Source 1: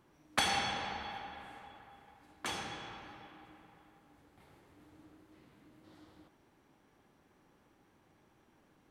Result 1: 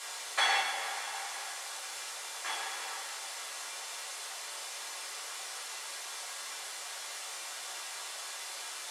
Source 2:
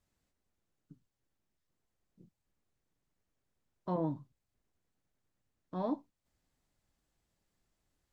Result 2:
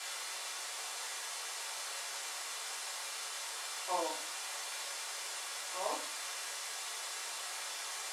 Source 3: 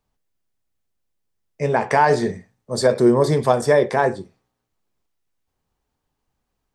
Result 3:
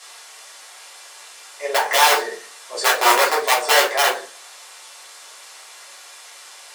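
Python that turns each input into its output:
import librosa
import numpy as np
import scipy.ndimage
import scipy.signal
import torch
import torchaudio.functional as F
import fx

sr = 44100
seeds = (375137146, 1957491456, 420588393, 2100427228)

p1 = fx.echo_thinned(x, sr, ms=135, feedback_pct=16, hz=1100.0, wet_db=-16)
p2 = fx.level_steps(p1, sr, step_db=17)
p3 = p1 + F.gain(torch.from_numpy(p2), -1.5).numpy()
p4 = fx.peak_eq(p3, sr, hz=1900.0, db=5.0, octaves=0.51)
p5 = fx.quant_dither(p4, sr, seeds[0], bits=6, dither='triangular')
p6 = scipy.signal.sosfilt(scipy.signal.butter(4, 9800.0, 'lowpass', fs=sr, output='sos'), p5)
p7 = (np.mod(10.0 ** (5.0 / 20.0) * p6 + 1.0, 2.0) - 1.0) / 10.0 ** (5.0 / 20.0)
p8 = scipy.signal.sosfilt(scipy.signal.butter(4, 530.0, 'highpass', fs=sr, output='sos'), p7)
p9 = fx.room_shoebox(p8, sr, seeds[1], volume_m3=130.0, walls='furnished', distance_m=3.1)
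y = F.gain(torch.from_numpy(p9), -8.5).numpy()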